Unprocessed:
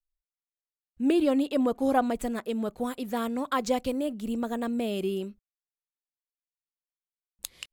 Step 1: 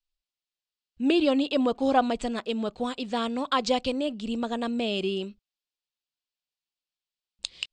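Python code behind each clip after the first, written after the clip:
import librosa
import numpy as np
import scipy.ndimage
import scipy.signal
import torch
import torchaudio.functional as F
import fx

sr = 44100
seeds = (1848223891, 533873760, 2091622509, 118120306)

y = fx.dynamic_eq(x, sr, hz=930.0, q=0.85, threshold_db=-39.0, ratio=4.0, max_db=3)
y = scipy.signal.sosfilt(scipy.signal.butter(12, 8700.0, 'lowpass', fs=sr, output='sos'), y)
y = fx.band_shelf(y, sr, hz=3600.0, db=9.0, octaves=1.2)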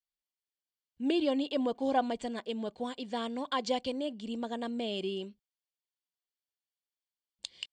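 y = fx.notch_comb(x, sr, f0_hz=1300.0)
y = y * librosa.db_to_amplitude(-6.0)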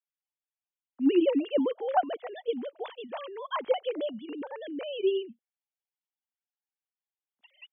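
y = fx.sine_speech(x, sr)
y = y * librosa.db_to_amplitude(3.5)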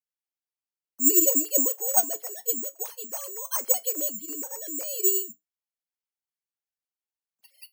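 y = (np.kron(scipy.signal.resample_poly(x, 1, 6), np.eye(6)[0]) * 6)[:len(x)]
y = fx.comb_fb(y, sr, f0_hz=61.0, decay_s=0.17, harmonics='odd', damping=0.0, mix_pct=60)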